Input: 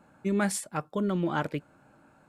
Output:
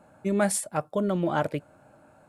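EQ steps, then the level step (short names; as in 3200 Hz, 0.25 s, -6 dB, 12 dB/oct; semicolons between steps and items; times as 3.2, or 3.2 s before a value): fifteen-band EQ 100 Hz +6 dB, 630 Hz +9 dB, 10000 Hz +7 dB; 0.0 dB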